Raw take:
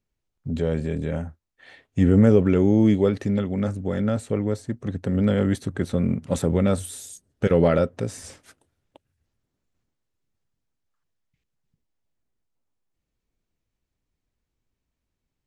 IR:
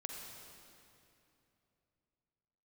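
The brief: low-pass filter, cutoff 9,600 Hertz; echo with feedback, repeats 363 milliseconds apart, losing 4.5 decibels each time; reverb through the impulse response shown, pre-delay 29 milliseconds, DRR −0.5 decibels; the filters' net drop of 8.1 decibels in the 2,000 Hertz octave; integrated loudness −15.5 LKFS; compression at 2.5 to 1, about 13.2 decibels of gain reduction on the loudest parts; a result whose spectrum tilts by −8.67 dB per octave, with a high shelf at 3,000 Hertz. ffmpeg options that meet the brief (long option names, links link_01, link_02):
-filter_complex "[0:a]lowpass=9600,equalizer=frequency=2000:width_type=o:gain=-8,highshelf=frequency=3000:gain=-8,acompressor=threshold=-32dB:ratio=2.5,aecho=1:1:363|726|1089|1452|1815|2178|2541|2904|3267:0.596|0.357|0.214|0.129|0.0772|0.0463|0.0278|0.0167|0.01,asplit=2[link_01][link_02];[1:a]atrim=start_sample=2205,adelay=29[link_03];[link_02][link_03]afir=irnorm=-1:irlink=0,volume=2dB[link_04];[link_01][link_04]amix=inputs=2:normalize=0,volume=12.5dB"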